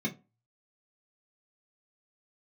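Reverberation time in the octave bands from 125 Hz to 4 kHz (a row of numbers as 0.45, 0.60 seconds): 0.45, 0.30, 0.30, 0.30, 0.20, 0.15 seconds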